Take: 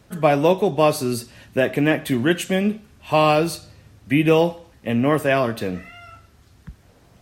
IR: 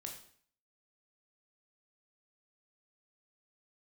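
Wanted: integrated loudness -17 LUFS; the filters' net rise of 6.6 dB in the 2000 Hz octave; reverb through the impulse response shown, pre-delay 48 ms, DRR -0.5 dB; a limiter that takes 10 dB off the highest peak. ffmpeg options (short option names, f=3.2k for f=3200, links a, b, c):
-filter_complex "[0:a]equalizer=f=2k:t=o:g=8.5,alimiter=limit=-11dB:level=0:latency=1,asplit=2[a][b];[1:a]atrim=start_sample=2205,adelay=48[c];[b][c]afir=irnorm=-1:irlink=0,volume=4dB[d];[a][d]amix=inputs=2:normalize=0,volume=2dB"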